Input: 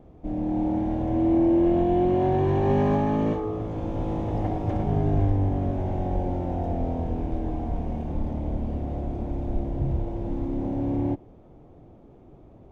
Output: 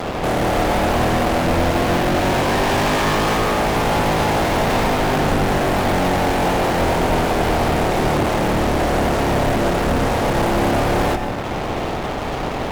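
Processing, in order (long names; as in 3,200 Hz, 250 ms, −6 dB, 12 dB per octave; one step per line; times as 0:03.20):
ceiling on every frequency bin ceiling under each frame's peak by 21 dB
downward compressor 2 to 1, threshold −38 dBFS, peak gain reduction 12 dB
fuzz pedal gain 50 dB, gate −53 dBFS
on a send: convolution reverb RT60 0.80 s, pre-delay 114 ms, DRR 6 dB
on the sum: level −4.5 dB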